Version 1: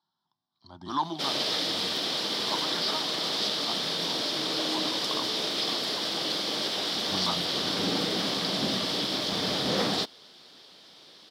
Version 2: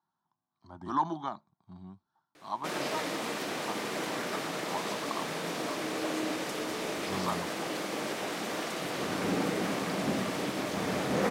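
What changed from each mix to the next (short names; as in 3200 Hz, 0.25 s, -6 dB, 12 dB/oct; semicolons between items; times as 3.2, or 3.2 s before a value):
background: entry +1.45 s; master: add band shelf 4100 Hz -15 dB 1 oct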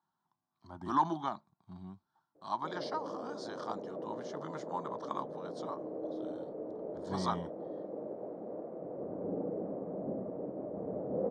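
background: add ladder low-pass 650 Hz, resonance 50%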